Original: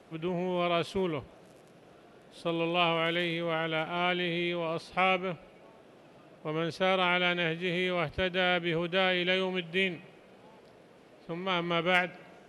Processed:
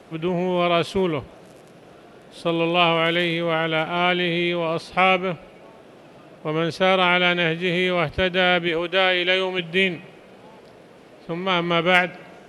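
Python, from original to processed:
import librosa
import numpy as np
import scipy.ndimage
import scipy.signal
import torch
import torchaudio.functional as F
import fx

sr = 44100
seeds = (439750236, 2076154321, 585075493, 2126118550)

y = fx.peak_eq(x, sr, hz=140.0, db=-13.5, octaves=1.1, at=(8.68, 9.59))
y = y * librosa.db_to_amplitude(9.0)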